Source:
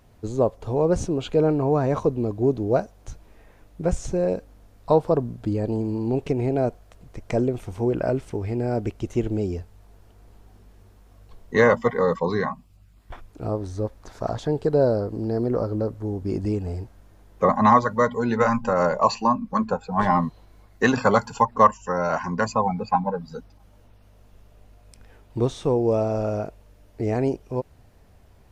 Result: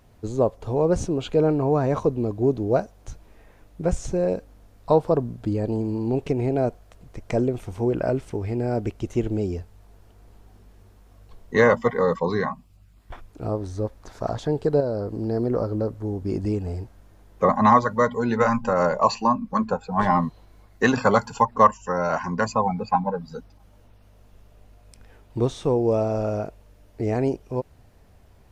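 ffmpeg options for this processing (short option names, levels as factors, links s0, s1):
-filter_complex "[0:a]asettb=1/sr,asplit=3[s0][s1][s2];[s0]atrim=end=14.804[s3];[s1]atrim=start=14.8:end=15.21,asetpts=PTS-STARTPTS,afade=t=in:d=0.004:c=qsin,afade=t=out:st=0.406:d=0.004:c=qsin,acompressor=threshold=0.0631:ratio=2.5:attack=3.2:release=140:knee=1:detection=peak[s4];[s2]atrim=start=15.206[s5];[s3][s4]acrossfade=d=0.004:c1=hsin:c2=qsin[s6];[s6][s5]acrossfade=d=0.004:c1=qsin:c2=hsin"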